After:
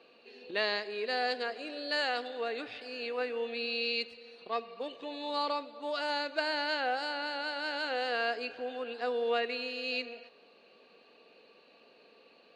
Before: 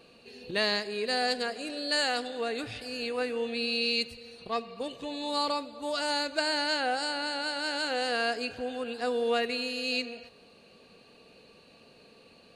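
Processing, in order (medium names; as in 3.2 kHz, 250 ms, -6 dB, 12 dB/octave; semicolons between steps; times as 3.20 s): three-band isolator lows -24 dB, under 260 Hz, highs -22 dB, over 4.6 kHz; trim -2 dB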